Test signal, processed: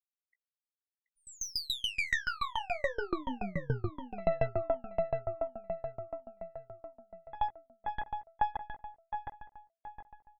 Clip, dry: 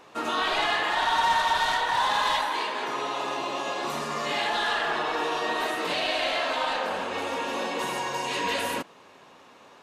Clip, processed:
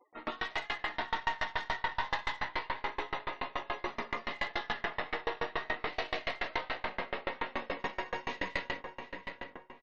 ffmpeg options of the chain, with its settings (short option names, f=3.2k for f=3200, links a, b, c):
-filter_complex "[0:a]lowpass=f=6.8k:w=0.5412,lowpass=f=6.8k:w=1.3066,acontrast=88,equalizer=f=2k:w=7.8:g=14,aeval=exprs='0.841*(cos(1*acos(clip(val(0)/0.841,-1,1)))-cos(1*PI/2))+0.0168*(cos(5*acos(clip(val(0)/0.841,-1,1)))-cos(5*PI/2))+0.075*(cos(6*acos(clip(val(0)/0.841,-1,1)))-cos(6*PI/2))+0.00841*(cos(7*acos(clip(val(0)/0.841,-1,1)))-cos(7*PI/2))':c=same,alimiter=limit=-9.5dB:level=0:latency=1:release=22,flanger=delay=16:depth=5.3:speed=0.28,adynamicsmooth=sensitivity=2.5:basefreq=3.9k,afftfilt=real='re*gte(hypot(re,im),0.0126)':imag='im*gte(hypot(re,im),0.0126)':win_size=1024:overlap=0.75,asplit=2[a][b];[b]adelay=729,lowpass=f=2.6k:p=1,volume=-5.5dB,asplit=2[c][d];[d]adelay=729,lowpass=f=2.6k:p=1,volume=0.47,asplit=2[e][f];[f]adelay=729,lowpass=f=2.6k:p=1,volume=0.47,asplit=2[g][h];[h]adelay=729,lowpass=f=2.6k:p=1,volume=0.47,asplit=2[i][j];[j]adelay=729,lowpass=f=2.6k:p=1,volume=0.47,asplit=2[k][l];[l]adelay=729,lowpass=f=2.6k:p=1,volume=0.47[m];[a][c][e][g][i][k][m]amix=inputs=7:normalize=0,aeval=exprs='val(0)*pow(10,-30*if(lt(mod(7*n/s,1),2*abs(7)/1000),1-mod(7*n/s,1)/(2*abs(7)/1000),(mod(7*n/s,1)-2*abs(7)/1000)/(1-2*abs(7)/1000))/20)':c=same,volume=-6.5dB"